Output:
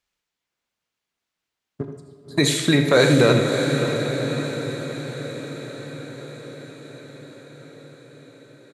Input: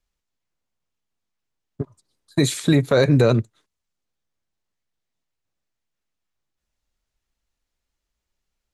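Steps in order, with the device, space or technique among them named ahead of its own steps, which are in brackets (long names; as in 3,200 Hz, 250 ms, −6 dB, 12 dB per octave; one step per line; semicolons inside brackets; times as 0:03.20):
PA in a hall (high-pass filter 170 Hz 6 dB per octave; parametric band 2,400 Hz +5.5 dB 2.5 octaves; single-tap delay 81 ms −11.5 dB; convolution reverb RT60 1.5 s, pre-delay 18 ms, DRR 6.5 dB)
feedback delay with all-pass diffusion 593 ms, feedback 47%, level −7 dB
feedback delay with all-pass diffusion 1,140 ms, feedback 51%, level −12 dB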